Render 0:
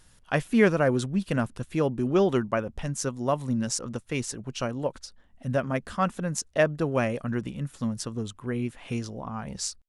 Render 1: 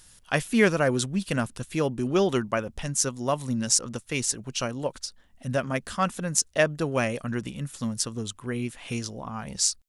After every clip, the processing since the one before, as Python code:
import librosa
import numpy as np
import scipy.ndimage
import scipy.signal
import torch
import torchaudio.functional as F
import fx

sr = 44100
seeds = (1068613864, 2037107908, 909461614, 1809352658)

y = fx.high_shelf(x, sr, hz=2700.0, db=11.0)
y = F.gain(torch.from_numpy(y), -1.0).numpy()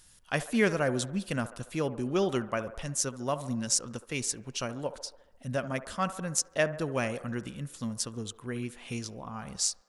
y = fx.echo_wet_bandpass(x, sr, ms=70, feedback_pct=61, hz=800.0, wet_db=-12.5)
y = F.gain(torch.from_numpy(y), -5.0).numpy()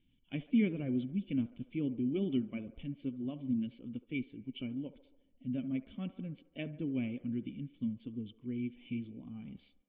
y = fx.spec_quant(x, sr, step_db=15)
y = fx.formant_cascade(y, sr, vowel='i')
y = F.gain(torch.from_numpy(y), 4.5).numpy()